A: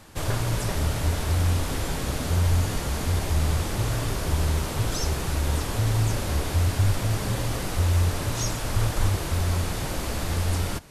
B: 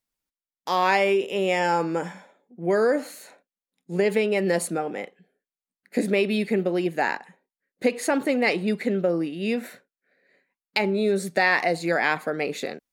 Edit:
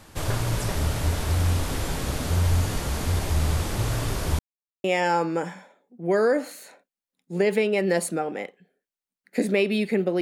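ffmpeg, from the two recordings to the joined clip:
ffmpeg -i cue0.wav -i cue1.wav -filter_complex "[0:a]apad=whole_dur=10.21,atrim=end=10.21,asplit=2[link_01][link_02];[link_01]atrim=end=4.39,asetpts=PTS-STARTPTS,afade=type=out:start_time=4.386:duration=0.004:curve=hsin[link_03];[link_02]atrim=start=4.39:end=4.84,asetpts=PTS-STARTPTS,volume=0[link_04];[1:a]atrim=start=1.43:end=6.8,asetpts=PTS-STARTPTS,afade=type=in:duration=0.004:curve=hsin[link_05];[link_03][link_04][link_05]concat=n=3:v=0:a=1" out.wav

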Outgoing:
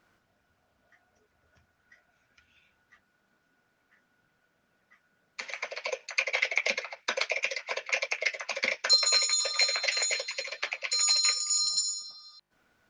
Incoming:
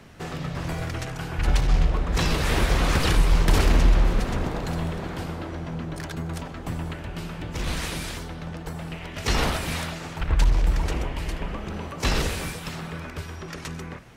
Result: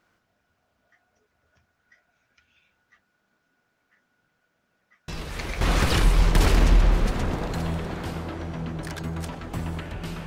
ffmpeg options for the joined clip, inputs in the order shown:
ffmpeg -i cue0.wav -i cue1.wav -filter_complex "[1:a]asplit=2[link_01][link_02];[0:a]apad=whole_dur=10.26,atrim=end=10.26,atrim=end=5.612[link_03];[link_02]atrim=start=2.738:end=7.39[link_04];[link_01]atrim=start=2.21:end=2.74,asetpts=PTS-STARTPTS,volume=-11dB,afade=type=in:duration=0.004:curve=hsin,afade=type=out:start_time=0.526:duration=0.004:curve=hsin,adelay=5080[link_05];[link_03][link_04]acrossfade=duration=0.004:curve1=hsin:curve2=hsin[link_06];[link_06][link_05]amix=inputs=2:normalize=0" out.wav

